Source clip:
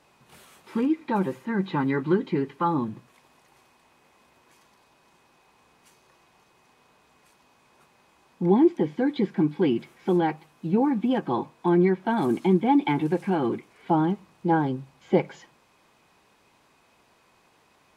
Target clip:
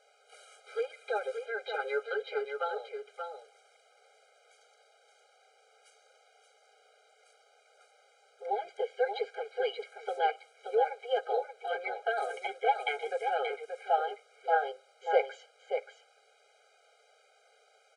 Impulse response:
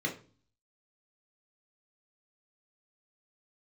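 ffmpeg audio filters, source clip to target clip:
-af "aresample=22050,aresample=44100,aecho=1:1:579:0.473,afftfilt=real='re*eq(mod(floor(b*sr/1024/410),2),1)':imag='im*eq(mod(floor(b*sr/1024/410),2),1)':win_size=1024:overlap=0.75"

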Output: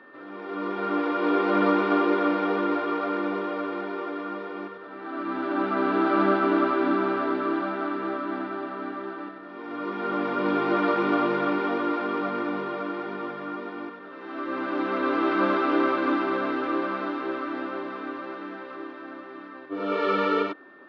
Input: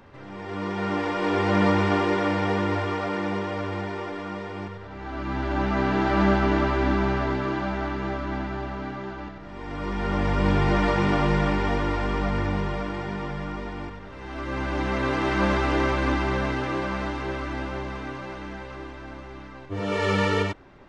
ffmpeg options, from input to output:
-af "highpass=f=250:w=0.5412,highpass=f=250:w=1.3066,equalizer=f=310:t=q:w=4:g=5,equalizer=f=860:t=q:w=4:g=-6,equalizer=f=1300:t=q:w=4:g=8,equalizer=f=1900:t=q:w=4:g=-9,equalizer=f=2900:t=q:w=4:g=-5,lowpass=f=3800:w=0.5412,lowpass=f=3800:w=1.3066,aeval=exprs='val(0)+0.00282*sin(2*PI*1800*n/s)':c=same"

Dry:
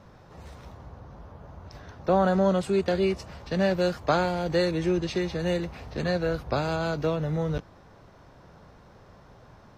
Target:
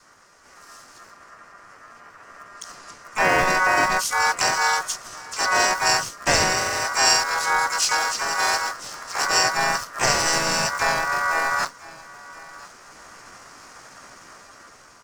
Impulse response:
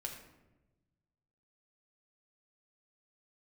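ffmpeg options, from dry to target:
-filter_complex "[0:a]asplit=2[s0][s1];[s1]aeval=exprs='val(0)*gte(abs(val(0)),0.0224)':c=same,volume=0.376[s2];[s0][s2]amix=inputs=2:normalize=0,acontrast=49,adynamicequalizer=threshold=0.0447:dfrequency=510:dqfactor=1.6:tfrequency=510:tqfactor=1.6:attack=5:release=100:ratio=0.375:range=1.5:mode=cutabove:tftype=bell,aeval=exprs='val(0)*sin(2*PI*1300*n/s)':c=same,aecho=1:1:659:0.0841,atempo=0.65,dynaudnorm=f=250:g=17:m=5.31,highshelf=f=4200:t=q:w=3:g=11,asplit=4[s3][s4][s5][s6];[s4]asetrate=22050,aresample=44100,atempo=2,volume=0.251[s7];[s5]asetrate=37084,aresample=44100,atempo=1.18921,volume=0.562[s8];[s6]asetrate=58866,aresample=44100,atempo=0.749154,volume=0.562[s9];[s3][s7][s8][s9]amix=inputs=4:normalize=0,volume=0.422"

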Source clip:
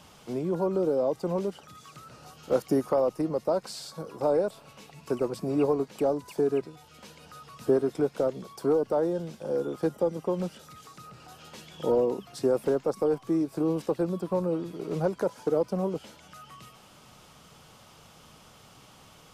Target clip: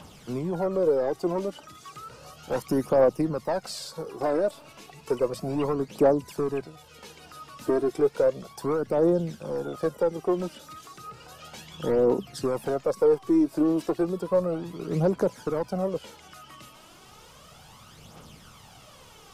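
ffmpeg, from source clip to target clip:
-af "aeval=exprs='(tanh(8.91*val(0)+0.1)-tanh(0.1))/8.91':c=same,aphaser=in_gain=1:out_gain=1:delay=3.5:decay=0.53:speed=0.33:type=triangular,volume=1.26"

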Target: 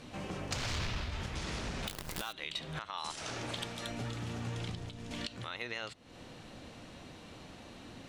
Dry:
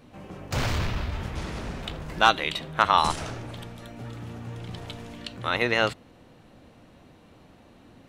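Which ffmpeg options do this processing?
-filter_complex "[0:a]lowpass=7800,asettb=1/sr,asplit=3[s0][s1][s2];[s0]atrim=end=1.874[s3];[s1]atrim=start=1.87:end=2.33,asetpts=PTS-STARTPTS,afade=t=in:d=0.004:c=qsin,afade=t=out:st=0.456:d=0.004:c=qsin,acrusher=bits=6:dc=4:mix=0:aa=0.000001[s4];[s2]atrim=start=2.326[s5];[s3][s4]acrossfade=d=0.004:c1=hsin:c2=qsin[s6];[s6][s5]acrossfade=d=0.004:c1=qsin:c2=hsin,asettb=1/sr,asplit=3[s7][s8][s9];[s7]atrim=end=2.904[s10];[s8]atrim=start=2.9:end=3.88,asetpts=PTS-STARTPTS,afade=t=in:d=0.004:c=qsin,afade=t=out:st=0.976:d=0.004:c=qsin,lowshelf=f=130:g=-12[s11];[s9]atrim=start=3.876[s12];[s10][s11]acrossfade=d=0.004:c1=hsin:c2=qsin[s13];[s13][s12]acrossfade=d=0.004:c1=qsin:c2=hsin,acompressor=threshold=0.0141:ratio=4,alimiter=level_in=2.24:limit=0.0631:level=0:latency=1:release=323,volume=0.447,asettb=1/sr,asplit=3[s14][s15][s16];[s14]atrim=end=4.714[s17];[s15]atrim=start=4.71:end=5.11,asetpts=PTS-STARTPTS,afade=t=in:d=0.004:c=qsin,afade=t=out:st=0.396:d=0.004:c=qsin,acrossover=split=370[s18][s19];[s19]acompressor=threshold=0.00158:ratio=4[s20];[s18][s20]amix=inputs=2:normalize=0[s21];[s16]atrim=start=5.106[s22];[s17][s21]acrossfade=d=0.004:c1=hsin:c2=qsin[s23];[s23][s22]acrossfade=d=0.004:c1=qsin:c2=hsin,highshelf=f=2700:g=11.5,volume=1.19"

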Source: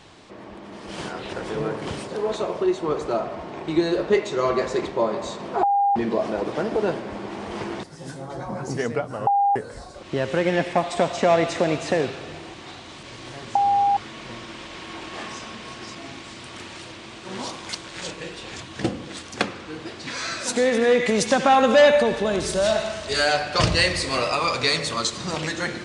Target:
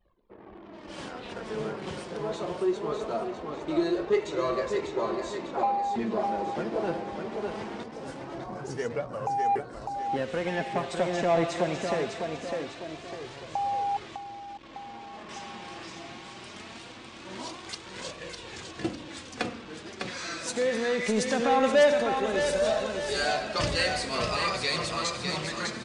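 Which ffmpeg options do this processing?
-filter_complex "[0:a]aecho=1:1:603|1206|1809|2412|3015:0.531|0.234|0.103|0.0452|0.0199,asettb=1/sr,asplit=3[s0][s1][s2];[s0]atrim=end=14.154[s3];[s1]atrim=start=14.15:end=15.29,asetpts=PTS-STARTPTS,afade=t=in:d=0.004:c=qsin,afade=t=out:st=1.136:d=0.004:c=qsin,acrossover=split=180|1400|4100[s4][s5][s6][s7];[s4]acompressor=threshold=0.00316:ratio=4[s8];[s5]acompressor=threshold=0.0224:ratio=4[s9];[s6]acompressor=threshold=0.00398:ratio=4[s10];[s7]acompressor=threshold=0.00251:ratio=4[s11];[s8][s9][s10][s11]amix=inputs=4:normalize=0[s12];[s2]atrim=start=15.286[s13];[s3][s12]acrossfade=d=0.004:c1=hsin:c2=qsin[s14];[s14][s13]acrossfade=d=0.004:c1=qsin:c2=hsin,flanger=delay=1.6:depth=4.5:regen=50:speed=0.22:shape=triangular,asplit=2[s15][s16];[s16]asoftclip=type=tanh:threshold=0.0944,volume=0.631[s17];[s15][s17]amix=inputs=2:normalize=0,aresample=22050,aresample=44100,anlmdn=0.251,volume=0.447"

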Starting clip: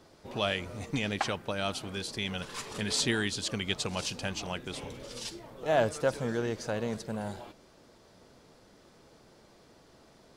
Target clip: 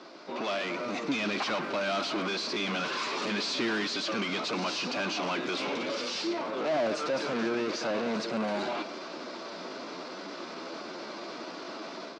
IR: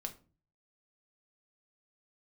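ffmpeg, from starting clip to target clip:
-filter_complex "[0:a]dynaudnorm=f=570:g=3:m=3.16,atempo=0.85,asoftclip=type=tanh:threshold=0.2,asplit=2[s0][s1];[s1]highpass=f=720:p=1,volume=31.6,asoftclip=type=tanh:threshold=0.2[s2];[s0][s2]amix=inputs=2:normalize=0,lowpass=f=3300:p=1,volume=0.501,highpass=f=190:w=0.5412,highpass=f=190:w=1.3066,equalizer=f=320:t=q:w=4:g=3,equalizer=f=470:t=q:w=4:g=-7,equalizer=f=820:t=q:w=4:g=-6,equalizer=f=1800:t=q:w=4:g=-7,equalizer=f=3200:t=q:w=4:g=-5,lowpass=f=5400:w=0.5412,lowpass=f=5400:w=1.3066,asplit=2[s3][s4];[s4]adelay=120,highpass=300,lowpass=3400,asoftclip=type=hard:threshold=0.0944,volume=0.2[s5];[s3][s5]amix=inputs=2:normalize=0,volume=0.447"

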